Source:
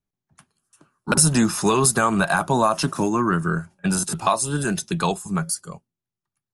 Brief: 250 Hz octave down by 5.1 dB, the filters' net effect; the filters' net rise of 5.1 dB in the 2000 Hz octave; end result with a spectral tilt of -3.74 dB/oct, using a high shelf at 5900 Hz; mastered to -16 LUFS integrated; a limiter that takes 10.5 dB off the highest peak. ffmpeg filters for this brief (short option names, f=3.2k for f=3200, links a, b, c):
-af "equalizer=f=250:t=o:g=-7.5,equalizer=f=2k:t=o:g=8.5,highshelf=f=5.9k:g=-5,volume=9dB,alimiter=limit=-4.5dB:level=0:latency=1"